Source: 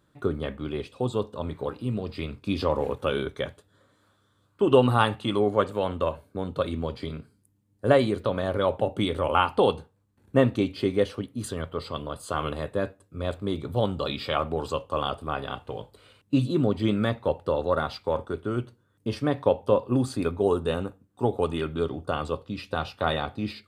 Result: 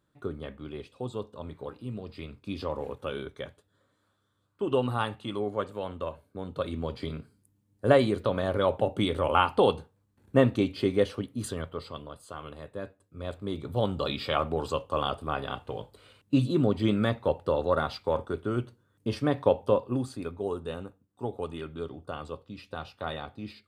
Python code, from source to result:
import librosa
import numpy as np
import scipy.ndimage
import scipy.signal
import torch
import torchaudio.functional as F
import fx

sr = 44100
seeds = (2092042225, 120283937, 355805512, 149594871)

y = fx.gain(x, sr, db=fx.line((6.22, -8.0), (7.05, -1.0), (11.47, -1.0), (12.41, -13.0), (14.0, -1.0), (19.63, -1.0), (20.19, -9.0)))